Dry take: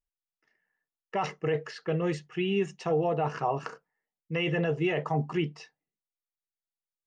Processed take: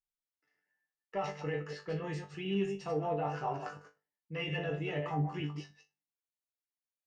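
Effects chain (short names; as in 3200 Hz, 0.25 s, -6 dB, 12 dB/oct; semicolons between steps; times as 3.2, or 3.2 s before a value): reverse delay 0.102 s, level -6 dB; resonator bank G2 fifth, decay 0.22 s; added harmonics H 6 -36 dB, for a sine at -23.5 dBFS; gain +2.5 dB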